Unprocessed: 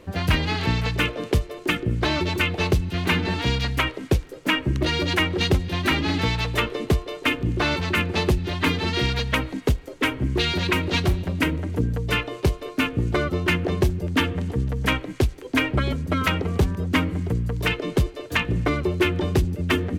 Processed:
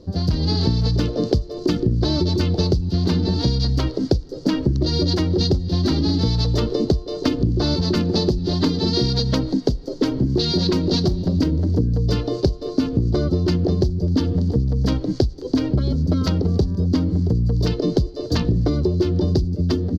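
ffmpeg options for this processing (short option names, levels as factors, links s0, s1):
-filter_complex "[0:a]asettb=1/sr,asplit=3[s0][s1][s2];[s0]atrim=end=7.814[s3];[s1]atrim=start=7.81:end=11.37,asetpts=PTS-STARTPTS,afade=t=in:d=0.004:c=qsin,afade=t=out:st=3.556:d=0.004:c=qsin,equalizer=f=75:t=o:w=0.77:g=-10[s4];[s2]atrim=start=11.366[s5];[s3][s4]acrossfade=d=0.004:c1=hsin:c2=qsin[s6];[s6][s5]acrossfade=d=0.004:c1=qsin:c2=hsin,dynaudnorm=f=120:g=9:m=3.76,firequalizer=gain_entry='entry(230,0);entry(1000,-14);entry(2400,-27);entry(4600,5);entry(8300,-21)':delay=0.05:min_phase=1,acompressor=threshold=0.0891:ratio=10,volume=1.88"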